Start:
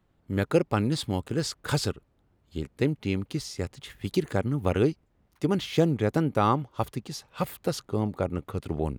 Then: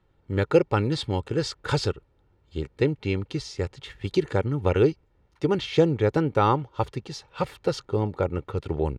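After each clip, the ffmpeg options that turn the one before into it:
-af "lowpass=5300,aecho=1:1:2.2:0.47,volume=1.26"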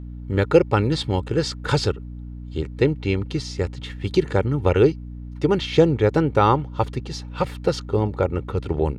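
-af "aeval=exprs='val(0)+0.0141*(sin(2*PI*60*n/s)+sin(2*PI*2*60*n/s)/2+sin(2*PI*3*60*n/s)/3+sin(2*PI*4*60*n/s)/4+sin(2*PI*5*60*n/s)/5)':c=same,volume=1.58"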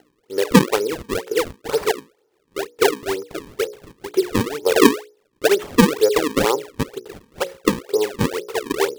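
-af "highpass=f=430:t=q:w=4.9,bandreject=f=60:t=h:w=6,bandreject=f=120:t=h:w=6,bandreject=f=180:t=h:w=6,bandreject=f=240:t=h:w=6,bandreject=f=300:t=h:w=6,bandreject=f=360:t=h:w=6,bandreject=f=420:t=h:w=6,bandreject=f=480:t=h:w=6,bandreject=f=540:t=h:w=6,bandreject=f=600:t=h:w=6,acrusher=samples=36:mix=1:aa=0.000001:lfo=1:lforange=57.6:lforate=2.1,volume=0.501"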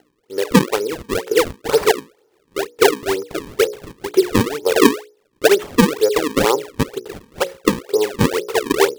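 -af "dynaudnorm=f=260:g=3:m=2.82,volume=0.891"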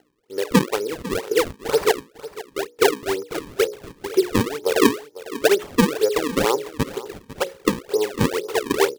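-af "aecho=1:1:500:0.158,volume=0.631"

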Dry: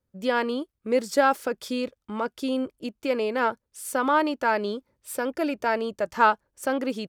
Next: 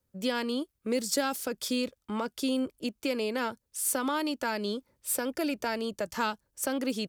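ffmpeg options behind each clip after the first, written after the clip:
-filter_complex "[0:a]highshelf=f=4400:g=8,acrossover=split=270|3000[s0][s1][s2];[s1]acompressor=threshold=0.0224:ratio=3[s3];[s0][s3][s2]amix=inputs=3:normalize=0"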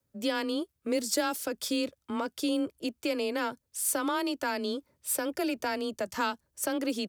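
-af "afreqshift=21"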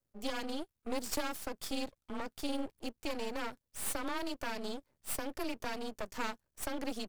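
-af "aeval=exprs='max(val(0),0)':c=same,volume=0.668"

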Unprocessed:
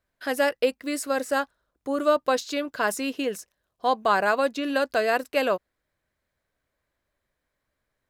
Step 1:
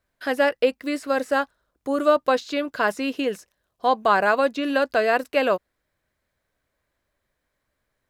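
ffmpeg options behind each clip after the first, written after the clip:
-filter_complex "[0:a]acrossover=split=4100[s0][s1];[s1]acompressor=threshold=0.00447:ratio=4:attack=1:release=60[s2];[s0][s2]amix=inputs=2:normalize=0,volume=1.41"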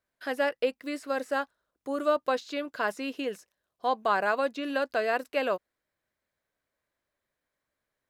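-af "lowshelf=f=100:g=-11.5,volume=0.447"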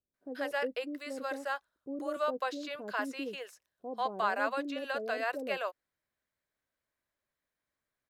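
-filter_complex "[0:a]acrossover=split=520[s0][s1];[s1]adelay=140[s2];[s0][s2]amix=inputs=2:normalize=0,volume=0.631"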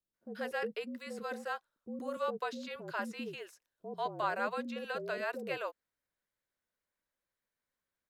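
-af "afreqshift=-46,volume=0.708"

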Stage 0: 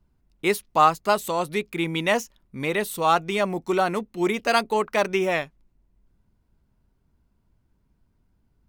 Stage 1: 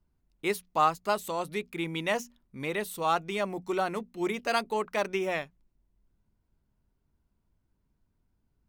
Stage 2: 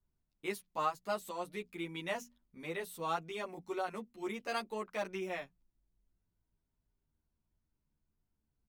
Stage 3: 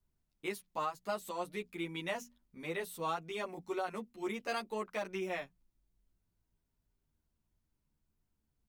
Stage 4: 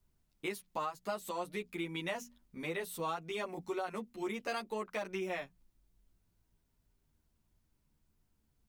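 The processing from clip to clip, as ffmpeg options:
-af "bandreject=f=60:t=h:w=6,bandreject=f=120:t=h:w=6,bandreject=f=180:t=h:w=6,bandreject=f=240:t=h:w=6,volume=0.447"
-filter_complex "[0:a]asplit=2[s0][s1];[s1]adelay=10.4,afreqshift=-0.26[s2];[s0][s2]amix=inputs=2:normalize=1,volume=0.501"
-af "alimiter=level_in=1.41:limit=0.0631:level=0:latency=1:release=167,volume=0.708,volume=1.19"
-af "acompressor=threshold=0.00631:ratio=2,volume=1.88"

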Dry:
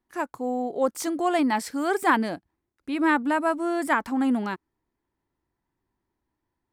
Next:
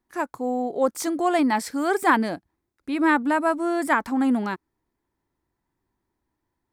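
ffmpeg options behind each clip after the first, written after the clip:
-af "equalizer=f=2900:w=5.6:g=-3.5,volume=1.26"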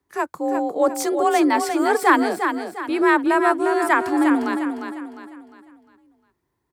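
-filter_complex "[0:a]afreqshift=39,asplit=2[s0][s1];[s1]aecho=0:1:353|706|1059|1412|1765:0.447|0.174|0.0679|0.0265|0.0103[s2];[s0][s2]amix=inputs=2:normalize=0,volume=1.41"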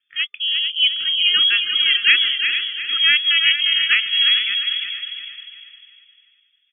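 -filter_complex "[0:a]asplit=2[s0][s1];[s1]adelay=446,lowpass=f=2800:p=1,volume=0.335,asplit=2[s2][s3];[s3]adelay=446,lowpass=f=2800:p=1,volume=0.27,asplit=2[s4][s5];[s5]adelay=446,lowpass=f=2800:p=1,volume=0.27[s6];[s0][s2][s4][s6]amix=inputs=4:normalize=0,lowpass=f=3100:t=q:w=0.5098,lowpass=f=3100:t=q:w=0.6013,lowpass=f=3100:t=q:w=0.9,lowpass=f=3100:t=q:w=2.563,afreqshift=-3600,afftfilt=real='re*(1-between(b*sr/4096,420,1200))':imag='im*(1-between(b*sr/4096,420,1200))':win_size=4096:overlap=0.75,volume=1.12"

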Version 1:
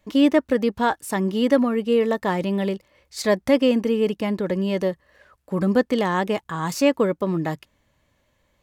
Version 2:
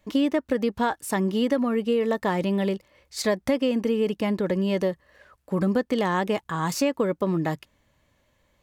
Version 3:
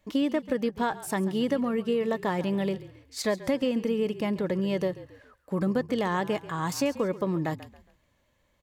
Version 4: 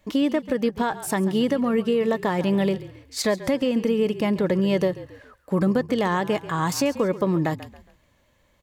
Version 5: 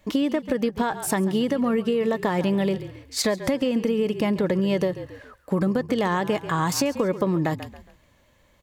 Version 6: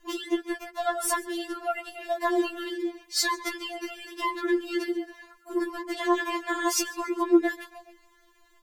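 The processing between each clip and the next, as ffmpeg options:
-af "acompressor=threshold=0.112:ratio=6"
-filter_complex "[0:a]asplit=4[s0][s1][s2][s3];[s1]adelay=137,afreqshift=-40,volume=0.15[s4];[s2]adelay=274,afreqshift=-80,volume=0.0569[s5];[s3]adelay=411,afreqshift=-120,volume=0.0216[s6];[s0][s4][s5][s6]amix=inputs=4:normalize=0,volume=0.668"
-af "alimiter=limit=0.112:level=0:latency=1:release=219,volume=2.11"
-af "acompressor=threshold=0.0794:ratio=6,volume=1.41"
-af "afftfilt=real='re*4*eq(mod(b,16),0)':imag='im*4*eq(mod(b,16),0)':win_size=2048:overlap=0.75,volume=1.41"

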